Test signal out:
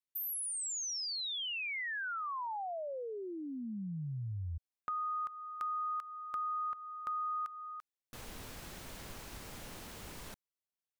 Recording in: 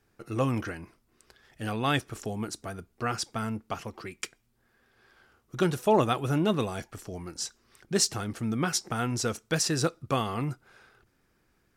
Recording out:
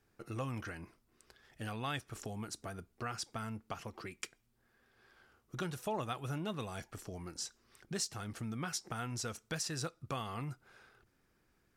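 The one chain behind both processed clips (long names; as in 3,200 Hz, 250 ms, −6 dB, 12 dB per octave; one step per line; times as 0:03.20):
dynamic equaliser 340 Hz, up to −6 dB, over −40 dBFS, Q 0.86
downward compressor 2 to 1, threshold −35 dBFS
level −4.5 dB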